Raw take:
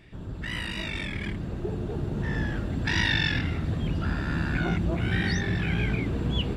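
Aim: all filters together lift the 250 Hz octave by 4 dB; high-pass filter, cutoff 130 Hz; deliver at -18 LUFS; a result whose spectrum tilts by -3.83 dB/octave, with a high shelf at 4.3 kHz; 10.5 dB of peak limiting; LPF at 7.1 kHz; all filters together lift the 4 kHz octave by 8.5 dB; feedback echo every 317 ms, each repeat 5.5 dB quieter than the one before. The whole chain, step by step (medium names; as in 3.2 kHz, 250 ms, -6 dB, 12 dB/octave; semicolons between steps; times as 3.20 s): high-pass 130 Hz; low-pass 7.1 kHz; peaking EQ 250 Hz +6.5 dB; peaking EQ 4 kHz +8.5 dB; treble shelf 4.3 kHz +4.5 dB; peak limiter -17 dBFS; feedback delay 317 ms, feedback 53%, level -5.5 dB; trim +8.5 dB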